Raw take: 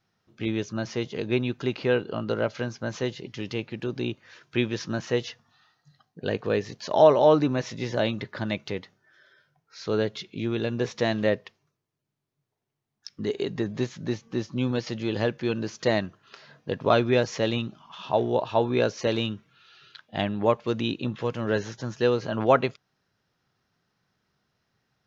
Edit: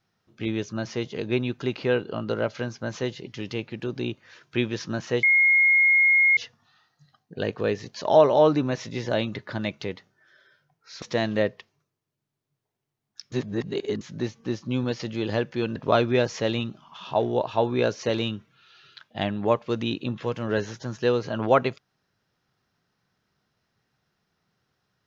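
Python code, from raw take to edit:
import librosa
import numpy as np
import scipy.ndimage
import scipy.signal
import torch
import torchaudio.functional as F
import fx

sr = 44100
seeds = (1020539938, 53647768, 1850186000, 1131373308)

y = fx.edit(x, sr, fx.insert_tone(at_s=5.23, length_s=1.14, hz=2150.0, db=-15.0),
    fx.cut(start_s=9.88, length_s=1.01),
    fx.reverse_span(start_s=13.19, length_s=0.69),
    fx.cut(start_s=15.63, length_s=1.11), tone=tone)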